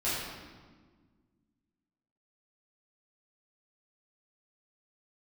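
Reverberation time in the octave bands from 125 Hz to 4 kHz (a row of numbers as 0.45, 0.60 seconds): 2.2, 2.4, 1.7, 1.4, 1.2, 1.1 seconds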